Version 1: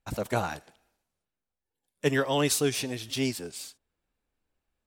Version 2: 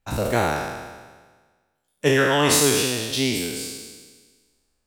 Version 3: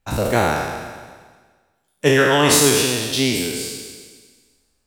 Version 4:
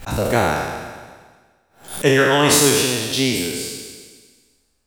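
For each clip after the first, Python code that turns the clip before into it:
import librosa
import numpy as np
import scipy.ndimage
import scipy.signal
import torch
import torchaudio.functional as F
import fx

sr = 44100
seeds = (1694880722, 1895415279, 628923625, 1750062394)

y1 = fx.spec_trails(x, sr, decay_s=1.46)
y1 = y1 * 10.0 ** (4.0 / 20.0)
y2 = fx.echo_feedback(y1, sr, ms=131, feedback_pct=59, wet_db=-15.5)
y2 = y2 * 10.0 ** (3.5 / 20.0)
y3 = fx.pre_swell(y2, sr, db_per_s=140.0)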